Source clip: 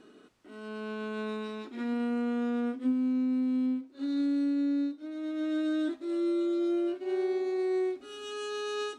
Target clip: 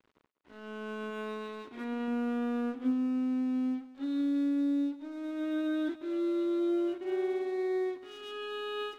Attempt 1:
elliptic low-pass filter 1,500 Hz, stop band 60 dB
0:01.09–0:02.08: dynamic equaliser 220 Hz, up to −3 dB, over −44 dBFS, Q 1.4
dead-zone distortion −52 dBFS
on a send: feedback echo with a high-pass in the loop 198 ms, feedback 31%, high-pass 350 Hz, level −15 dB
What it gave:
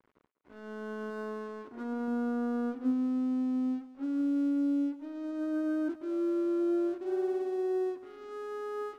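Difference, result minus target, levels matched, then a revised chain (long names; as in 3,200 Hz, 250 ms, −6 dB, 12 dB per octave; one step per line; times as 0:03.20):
4,000 Hz band −13.5 dB
elliptic low-pass filter 3,600 Hz, stop band 60 dB
0:01.09–0:02.08: dynamic equaliser 220 Hz, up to −3 dB, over −44 dBFS, Q 1.4
dead-zone distortion −52 dBFS
on a send: feedback echo with a high-pass in the loop 198 ms, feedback 31%, high-pass 350 Hz, level −15 dB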